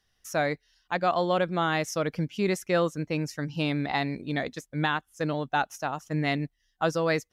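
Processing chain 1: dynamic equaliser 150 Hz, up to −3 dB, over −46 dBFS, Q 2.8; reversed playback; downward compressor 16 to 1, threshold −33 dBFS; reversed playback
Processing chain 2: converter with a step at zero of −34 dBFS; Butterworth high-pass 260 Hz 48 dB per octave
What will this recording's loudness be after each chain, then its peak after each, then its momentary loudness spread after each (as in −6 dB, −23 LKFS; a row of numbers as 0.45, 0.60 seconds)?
−39.0, −28.0 LKFS; −22.5, −11.5 dBFS; 3, 6 LU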